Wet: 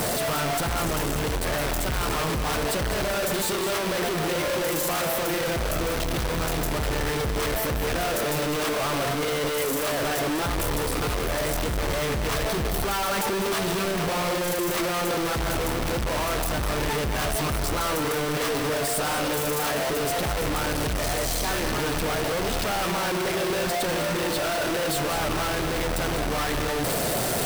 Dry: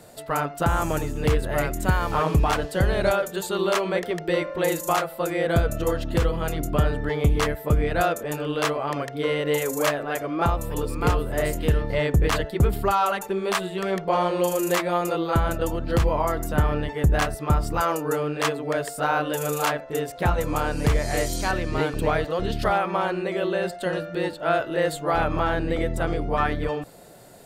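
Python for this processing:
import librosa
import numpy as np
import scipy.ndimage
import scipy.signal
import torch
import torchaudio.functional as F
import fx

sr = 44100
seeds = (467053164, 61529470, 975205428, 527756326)

p1 = np.sign(x) * np.sqrt(np.mean(np.square(x)))
p2 = fx.notch(p1, sr, hz=6900.0, q=22.0)
p3 = p2 + fx.echo_single(p2, sr, ms=201, db=-9.5, dry=0)
y = F.gain(torch.from_numpy(p3), -2.5).numpy()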